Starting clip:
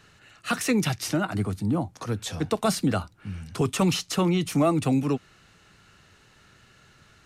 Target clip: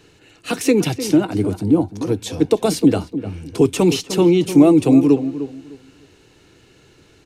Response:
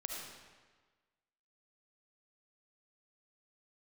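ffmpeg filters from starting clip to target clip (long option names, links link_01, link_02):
-filter_complex "[0:a]superequalizer=6b=3.16:7b=2.51:10b=0.447:11b=0.562,asplit=2[link_01][link_02];[link_02]adelay=303,lowpass=frequency=1600:poles=1,volume=-11.5dB,asplit=2[link_03][link_04];[link_04]adelay=303,lowpass=frequency=1600:poles=1,volume=0.23,asplit=2[link_05][link_06];[link_06]adelay=303,lowpass=frequency=1600:poles=1,volume=0.23[link_07];[link_01][link_03][link_05][link_07]amix=inputs=4:normalize=0,volume=4dB"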